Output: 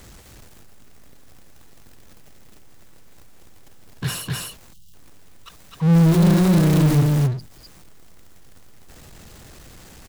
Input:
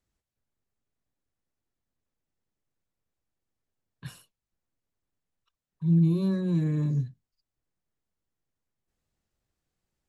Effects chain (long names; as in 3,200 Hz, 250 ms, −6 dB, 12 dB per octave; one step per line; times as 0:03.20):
0:05.93–0:07.00: background noise pink −42 dBFS
on a send: single-tap delay 256 ms −3 dB
on the sum: power curve on the samples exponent 0.5
0:04.73–0:04.94: gain on a spectral selection 200–2,700 Hz −23 dB
level +4 dB